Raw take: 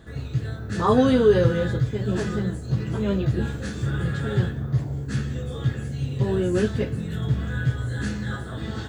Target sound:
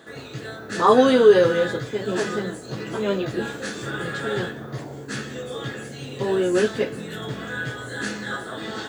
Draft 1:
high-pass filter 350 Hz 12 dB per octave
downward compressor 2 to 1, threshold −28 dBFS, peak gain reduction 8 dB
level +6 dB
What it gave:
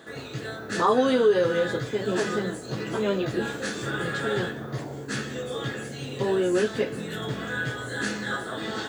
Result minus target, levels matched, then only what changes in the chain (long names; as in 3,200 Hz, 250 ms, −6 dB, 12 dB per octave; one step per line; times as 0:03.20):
downward compressor: peak gain reduction +8 dB
remove: downward compressor 2 to 1, threshold −28 dBFS, peak gain reduction 8 dB